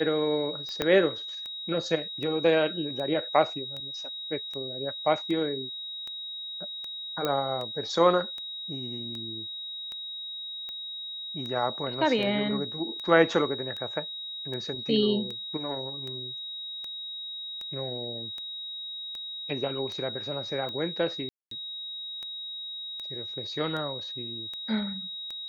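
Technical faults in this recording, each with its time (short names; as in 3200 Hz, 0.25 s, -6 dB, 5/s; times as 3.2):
tick 78 rpm -25 dBFS
tone 3800 Hz -35 dBFS
0.82 pop -12 dBFS
7.25 pop -14 dBFS
21.29–21.51 gap 0.223 s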